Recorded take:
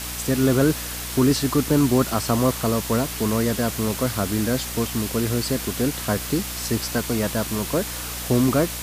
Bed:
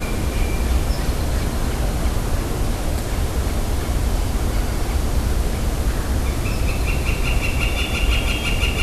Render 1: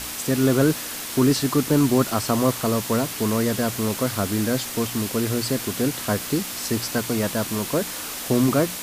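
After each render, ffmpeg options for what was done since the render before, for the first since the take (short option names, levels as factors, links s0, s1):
-af "bandreject=f=60:t=h:w=6,bandreject=f=120:t=h:w=6,bandreject=f=180:t=h:w=6"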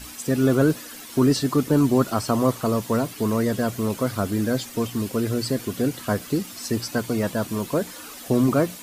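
-af "afftdn=nr=11:nf=-32"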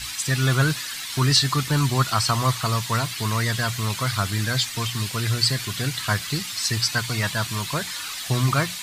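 -af "equalizer=f=125:t=o:w=1:g=8,equalizer=f=250:t=o:w=1:g=-11,equalizer=f=500:t=o:w=1:g=-10,equalizer=f=1000:t=o:w=1:g=4,equalizer=f=2000:t=o:w=1:g=8,equalizer=f=4000:t=o:w=1:g=11,equalizer=f=8000:t=o:w=1:g=5"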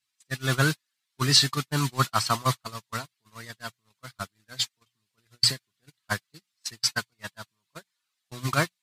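-af "highpass=150,agate=range=0.00355:threshold=0.0891:ratio=16:detection=peak"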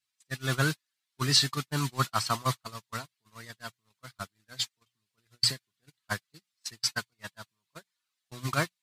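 -af "volume=0.631"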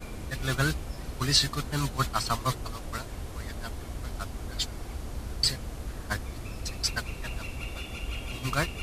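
-filter_complex "[1:a]volume=0.15[s0];[0:a][s0]amix=inputs=2:normalize=0"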